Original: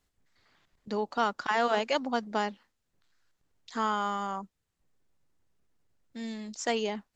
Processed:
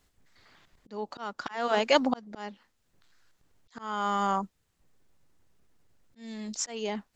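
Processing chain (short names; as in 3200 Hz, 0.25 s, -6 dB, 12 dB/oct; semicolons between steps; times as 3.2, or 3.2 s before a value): auto swell 0.519 s; gain +7.5 dB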